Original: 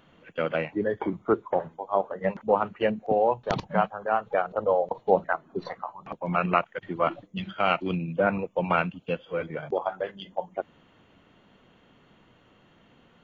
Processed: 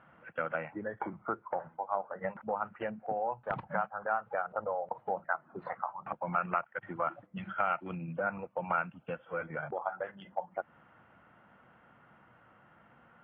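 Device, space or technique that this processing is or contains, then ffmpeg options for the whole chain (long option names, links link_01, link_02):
bass amplifier: -af "acompressor=threshold=-30dB:ratio=4,highpass=70,equalizer=frequency=87:width_type=q:width=4:gain=-5,equalizer=frequency=180:width_type=q:width=4:gain=-4,equalizer=frequency=280:width_type=q:width=4:gain=-7,equalizer=frequency=410:width_type=q:width=4:gain=-9,equalizer=frequency=820:width_type=q:width=4:gain=4,equalizer=frequency=1400:width_type=q:width=4:gain=8,lowpass=frequency=2200:width=0.5412,lowpass=frequency=2200:width=1.3066,volume=-1.5dB"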